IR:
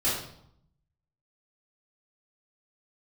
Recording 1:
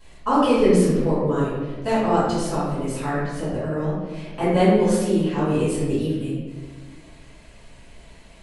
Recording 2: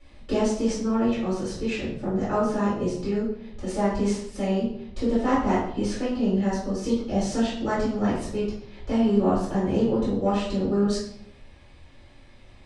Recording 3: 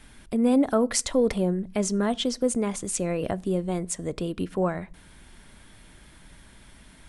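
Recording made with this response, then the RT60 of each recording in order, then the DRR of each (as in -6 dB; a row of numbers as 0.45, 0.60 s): 2; 1.5 s, 0.70 s, not exponential; -12.5, -10.5, 15.5 dB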